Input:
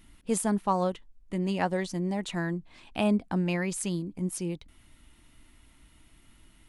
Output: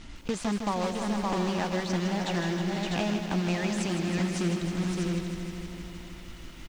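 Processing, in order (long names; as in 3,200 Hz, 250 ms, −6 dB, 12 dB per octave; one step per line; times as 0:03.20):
one scale factor per block 3 bits
low-pass filter 6,600 Hz 24 dB per octave
on a send: multi-tap delay 565/651 ms −11/−11.5 dB
on the sum: downward compressor, threshold −37 dBFS, peak gain reduction 15.5 dB
in parallel at 0 dB: brickwall limiter −34 dBFS, peak gain reduction 10 dB
on the sum: feedback echo at a low word length 157 ms, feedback 80%, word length 10 bits, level −8 dB
level +5 dB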